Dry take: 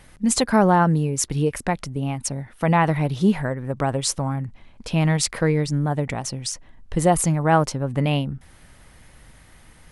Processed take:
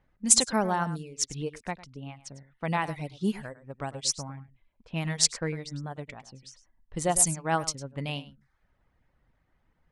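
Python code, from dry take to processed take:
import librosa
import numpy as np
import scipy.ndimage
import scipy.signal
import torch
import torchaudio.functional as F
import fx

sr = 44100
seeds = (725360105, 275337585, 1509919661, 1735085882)

p1 = fx.dereverb_blind(x, sr, rt60_s=0.63)
p2 = fx.env_lowpass(p1, sr, base_hz=1200.0, full_db=-15.0)
p3 = fx.peak_eq(p2, sr, hz=7200.0, db=13.5, octaves=2.3)
p4 = p3 + fx.echo_single(p3, sr, ms=103, db=-12.5, dry=0)
p5 = fx.upward_expand(p4, sr, threshold_db=-32.0, expansion=1.5)
y = p5 * 10.0 ** (-6.5 / 20.0)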